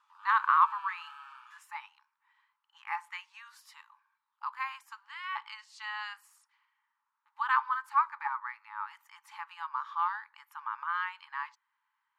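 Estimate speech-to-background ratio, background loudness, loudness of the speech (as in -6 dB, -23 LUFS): 15.0 dB, -48.0 LUFS, -33.0 LUFS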